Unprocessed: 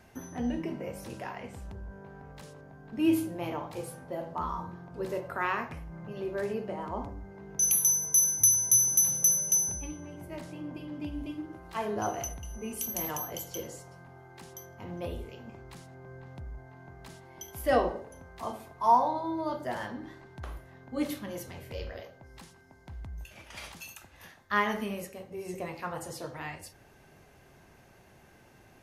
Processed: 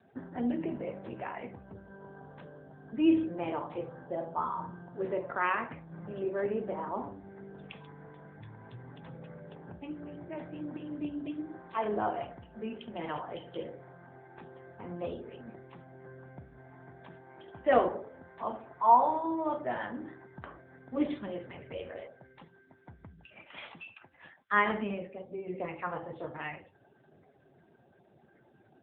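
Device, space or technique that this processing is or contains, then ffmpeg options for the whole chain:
mobile call with aggressive noise cancelling: -filter_complex "[0:a]asplit=3[s0][s1][s2];[s0]afade=t=out:st=2.5:d=0.02[s3];[s1]equalizer=f=64:w=4.2:g=-4,afade=t=in:st=2.5:d=0.02,afade=t=out:st=3.78:d=0.02[s4];[s2]afade=t=in:st=3.78:d=0.02[s5];[s3][s4][s5]amix=inputs=3:normalize=0,highpass=f=180:p=1,afftdn=nr=25:nf=-54,volume=1.26" -ar 8000 -c:a libopencore_amrnb -b:a 7950

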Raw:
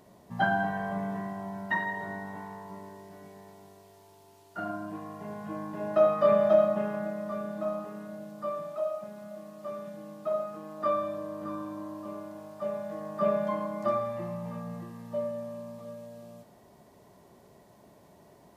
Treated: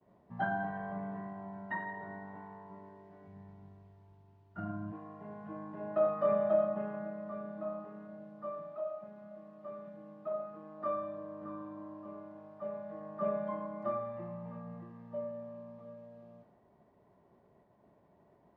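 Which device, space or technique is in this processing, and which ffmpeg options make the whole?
hearing-loss simulation: -filter_complex "[0:a]lowpass=1900,agate=range=0.0224:threshold=0.002:ratio=3:detection=peak,asplit=3[s0][s1][s2];[s0]afade=t=out:st=3.27:d=0.02[s3];[s1]asubboost=boost=9:cutoff=160,afade=t=in:st=3.27:d=0.02,afade=t=out:st=4.91:d=0.02[s4];[s2]afade=t=in:st=4.91:d=0.02[s5];[s3][s4][s5]amix=inputs=3:normalize=0,volume=0.447"

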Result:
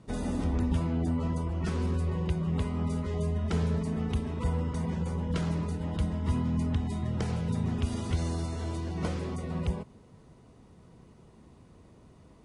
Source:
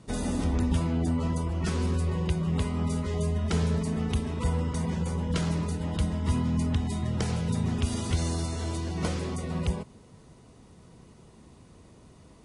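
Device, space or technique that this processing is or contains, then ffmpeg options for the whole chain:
behind a face mask: -af "highshelf=f=3300:g=-8,volume=0.794"

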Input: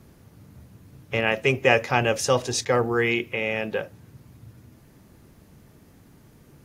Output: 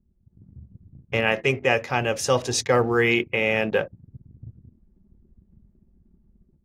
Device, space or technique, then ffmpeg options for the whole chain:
voice memo with heavy noise removal: -filter_complex "[0:a]asettb=1/sr,asplit=3[s0][s1][s2];[s0]atrim=end=1.174[s3];[s1]atrim=start=1.17:end=1.66,asetpts=PTS-STARTPTS,afade=t=in:d=0.004:c=qsin,afade=t=out:st=0.486:d=0.004:c=qsin,bandreject=f=84.09:t=h:w=4,bandreject=f=168.18:t=h:w=4,bandreject=f=252.27:t=h:w=4,bandreject=f=336.36:t=h:w=4,bandreject=f=420.45:t=h:w=4,bandreject=f=504.54:t=h:w=4,bandreject=f=588.63:t=h:w=4,bandreject=f=672.72:t=h:w=4,bandreject=f=756.81:t=h:w=4,bandreject=f=840.9:t=h:w=4,bandreject=f=924.99:t=h:w=4,bandreject=f=1009.08:t=h:w=4,bandreject=f=1093.17:t=h:w=4,bandreject=f=1177.26:t=h:w=4,bandreject=f=1261.35:t=h:w=4,bandreject=f=1345.44:t=h:w=4,bandreject=f=1429.53:t=h:w=4,bandreject=f=1513.62:t=h:w=4,bandreject=f=1597.71:t=h:w=4,bandreject=f=1681.8:t=h:w=4,bandreject=f=1765.89:t=h:w=4,bandreject=f=1849.98:t=h:w=4,bandreject=f=1934.07:t=h:w=4,bandreject=f=2018.16:t=h:w=4,bandreject=f=2102.25:t=h:w=4,bandreject=f=2186.34:t=h:w=4[s4];[s2]atrim=start=1.656[s5];[s3][s4]acrossfade=d=0.004:c1=hsin:c2=qsin[s6];[s6][s5]acrossfade=d=0.004:c1=qsin:c2=hsin,anlmdn=0.631,dynaudnorm=f=230:g=3:m=3.55,volume=0.631"

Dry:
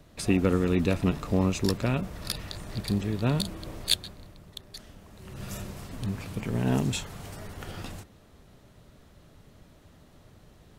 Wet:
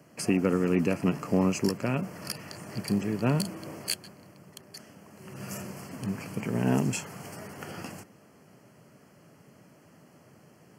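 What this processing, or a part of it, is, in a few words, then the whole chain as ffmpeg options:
PA system with an anti-feedback notch: -af "highpass=f=130:w=0.5412,highpass=f=130:w=1.3066,asuperstop=centerf=3700:order=4:qfactor=2.6,alimiter=limit=0.188:level=0:latency=1:release=457,volume=1.19"

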